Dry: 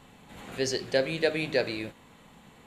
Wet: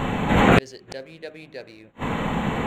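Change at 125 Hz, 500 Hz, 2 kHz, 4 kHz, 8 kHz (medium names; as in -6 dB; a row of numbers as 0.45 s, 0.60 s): +15.0 dB, +2.5 dB, +7.0 dB, +1.5 dB, -2.0 dB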